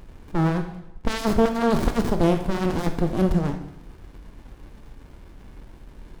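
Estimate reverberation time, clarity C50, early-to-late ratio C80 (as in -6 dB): 0.85 s, 8.5 dB, 11.0 dB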